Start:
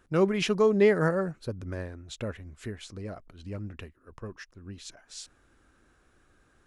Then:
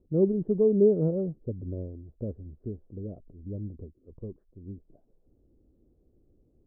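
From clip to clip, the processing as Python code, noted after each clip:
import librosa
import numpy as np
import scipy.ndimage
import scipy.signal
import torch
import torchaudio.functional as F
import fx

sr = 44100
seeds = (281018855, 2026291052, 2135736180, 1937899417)

y = scipy.signal.sosfilt(scipy.signal.cheby2(4, 70, 2200.0, 'lowpass', fs=sr, output='sos'), x)
y = y * 10.0 ** (1.5 / 20.0)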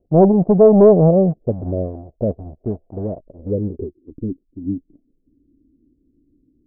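y = fx.dynamic_eq(x, sr, hz=180.0, q=2.1, threshold_db=-40.0, ratio=4.0, max_db=6)
y = fx.leveller(y, sr, passes=2)
y = fx.filter_sweep_lowpass(y, sr, from_hz=680.0, to_hz=280.0, start_s=3.11, end_s=4.22, q=6.6)
y = y * 10.0 ** (2.5 / 20.0)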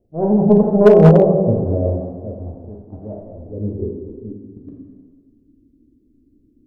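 y = fx.auto_swell(x, sr, attack_ms=315.0)
y = fx.rev_plate(y, sr, seeds[0], rt60_s=1.5, hf_ratio=0.8, predelay_ms=0, drr_db=-1.5)
y = np.clip(y, -10.0 ** (-2.0 / 20.0), 10.0 ** (-2.0 / 20.0))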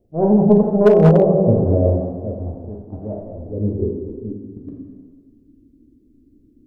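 y = fx.rider(x, sr, range_db=3, speed_s=0.5)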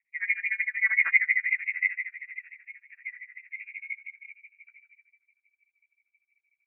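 y = x * (1.0 - 0.94 / 2.0 + 0.94 / 2.0 * np.cos(2.0 * np.pi * 13.0 * (np.arange(len(x)) / sr)))
y = fx.wah_lfo(y, sr, hz=5.8, low_hz=470.0, high_hz=1100.0, q=3.3)
y = fx.freq_invert(y, sr, carrier_hz=2600)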